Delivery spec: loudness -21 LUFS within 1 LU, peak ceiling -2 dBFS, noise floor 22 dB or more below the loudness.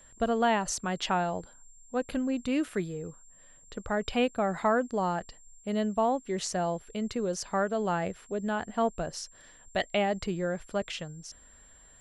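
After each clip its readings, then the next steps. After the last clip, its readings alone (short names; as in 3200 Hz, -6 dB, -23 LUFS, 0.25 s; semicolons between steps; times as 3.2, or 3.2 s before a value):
steady tone 7400 Hz; tone level -55 dBFS; loudness -30.5 LUFS; peak -14.5 dBFS; loudness target -21.0 LUFS
-> notch 7400 Hz, Q 30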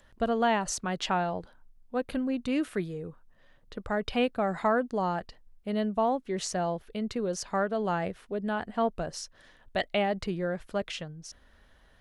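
steady tone none; loudness -30.5 LUFS; peak -14.5 dBFS; loudness target -21.0 LUFS
-> gain +9.5 dB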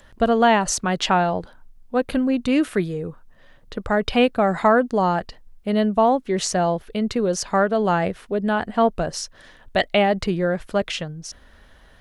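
loudness -21.0 LUFS; peak -5.0 dBFS; noise floor -51 dBFS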